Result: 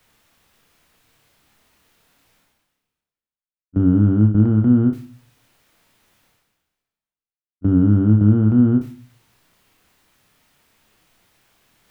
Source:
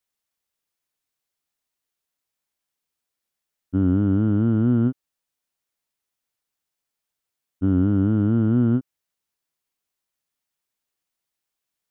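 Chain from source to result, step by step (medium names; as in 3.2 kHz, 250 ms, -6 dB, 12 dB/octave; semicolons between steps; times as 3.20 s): gate with hold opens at -12 dBFS; tone controls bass +6 dB, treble -9 dB; reverse; upward compressor, threshold -26 dBFS; reverse; flutter echo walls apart 4.9 m, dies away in 0.23 s; on a send at -15.5 dB: reverberation RT60 0.45 s, pre-delay 4 ms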